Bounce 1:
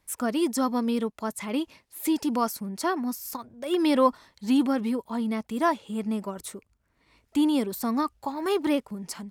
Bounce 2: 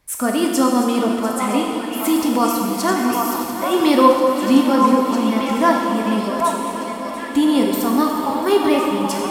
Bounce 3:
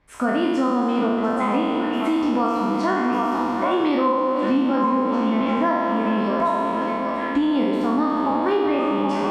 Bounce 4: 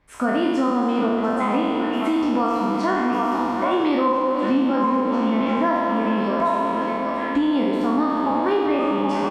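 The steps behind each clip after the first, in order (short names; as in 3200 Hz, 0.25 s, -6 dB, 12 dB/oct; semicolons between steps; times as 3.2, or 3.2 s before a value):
regenerating reverse delay 0.346 s, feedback 82%, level -13 dB; delay with a stepping band-pass 0.779 s, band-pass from 920 Hz, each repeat 1.4 oct, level -2 dB; plate-style reverb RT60 1.9 s, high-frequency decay 0.95×, DRR 0 dB; gain +6.5 dB
spectral trails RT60 1.28 s; compressor 6:1, threshold -17 dBFS, peak gain reduction 12.5 dB; LPF 2500 Hz 12 dB/oct
speakerphone echo 0.1 s, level -13 dB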